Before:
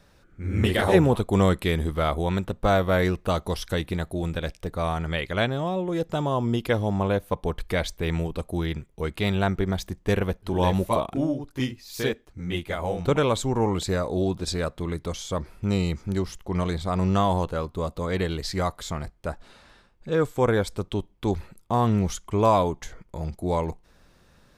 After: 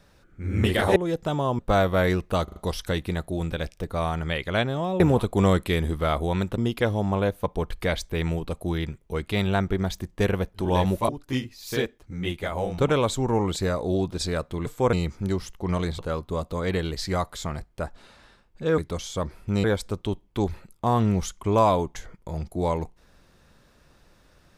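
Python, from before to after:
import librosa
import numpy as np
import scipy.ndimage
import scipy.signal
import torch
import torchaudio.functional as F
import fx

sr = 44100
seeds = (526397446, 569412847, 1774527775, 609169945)

y = fx.edit(x, sr, fx.swap(start_s=0.96, length_s=1.58, other_s=5.83, other_length_s=0.63),
    fx.stutter(start_s=3.39, slice_s=0.04, count=4),
    fx.cut(start_s=10.97, length_s=0.39),
    fx.swap(start_s=14.93, length_s=0.86, other_s=20.24, other_length_s=0.27),
    fx.cut(start_s=16.85, length_s=0.6), tone=tone)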